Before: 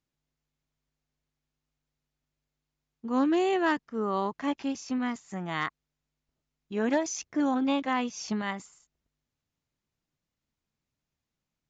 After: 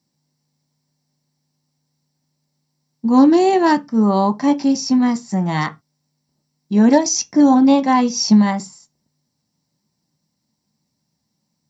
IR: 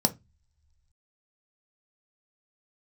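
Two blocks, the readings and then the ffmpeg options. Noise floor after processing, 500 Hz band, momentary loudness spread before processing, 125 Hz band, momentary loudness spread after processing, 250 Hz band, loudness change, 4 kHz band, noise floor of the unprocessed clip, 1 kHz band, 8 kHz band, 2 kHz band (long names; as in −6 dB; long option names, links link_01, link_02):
−74 dBFS, +11.0 dB, 10 LU, +19.0 dB, 9 LU, +15.5 dB, +14.5 dB, +13.5 dB, below −85 dBFS, +13.0 dB, can't be measured, +6.0 dB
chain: -filter_complex "[0:a]highshelf=frequency=2700:gain=8.5[link_01];[1:a]atrim=start_sample=2205,afade=type=out:start_time=0.18:duration=0.01,atrim=end_sample=8379[link_02];[link_01][link_02]afir=irnorm=-1:irlink=0,volume=-2dB"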